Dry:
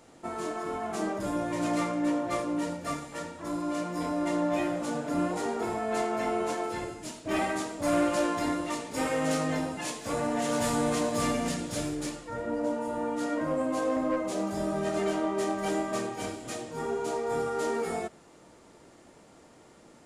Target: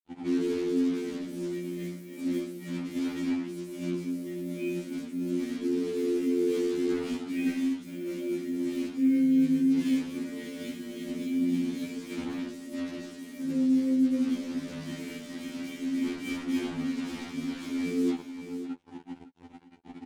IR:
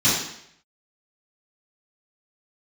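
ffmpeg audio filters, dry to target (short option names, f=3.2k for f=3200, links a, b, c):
-filter_complex "[0:a]asplit=3[a][b][c];[a]bandpass=f=270:t=q:w=8,volume=0dB[d];[b]bandpass=f=2.29k:t=q:w=8,volume=-6dB[e];[c]bandpass=f=3.01k:t=q:w=8,volume=-9dB[f];[d][e][f]amix=inputs=3:normalize=0,equalizer=f=860:w=4.4:g=-4[g];[1:a]atrim=start_sample=2205,asetrate=70560,aresample=44100[h];[g][h]afir=irnorm=-1:irlink=0,acrusher=bits=5:mix=0:aa=0.5,lowshelf=f=270:g=3.5,aecho=1:1:553:0.168,areverse,acompressor=threshold=-28dB:ratio=8,areverse,afftfilt=real='re*2*eq(mod(b,4),0)':imag='im*2*eq(mod(b,4),0)':win_size=2048:overlap=0.75,volume=4dB"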